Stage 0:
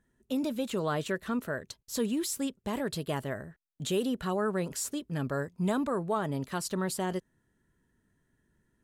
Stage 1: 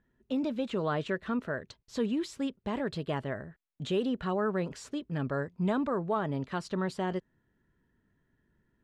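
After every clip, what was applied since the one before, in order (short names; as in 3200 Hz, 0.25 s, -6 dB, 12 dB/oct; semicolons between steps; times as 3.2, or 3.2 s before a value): LPF 3500 Hz 12 dB/oct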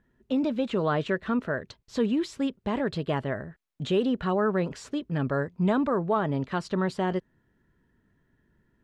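high shelf 7000 Hz -7 dB; gain +5 dB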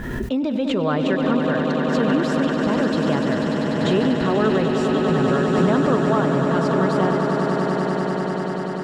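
on a send: swelling echo 98 ms, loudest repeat 8, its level -8 dB; on the sum: backwards sustainer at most 31 dB/s; gain +3 dB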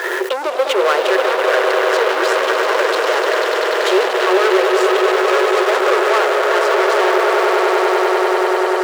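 sample leveller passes 5; rippled Chebyshev high-pass 360 Hz, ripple 3 dB; gain -1 dB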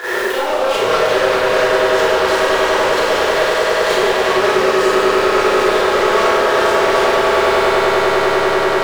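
soft clip -17 dBFS, distortion -9 dB; Schroeder reverb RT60 1 s, combs from 28 ms, DRR -10 dB; gain -4.5 dB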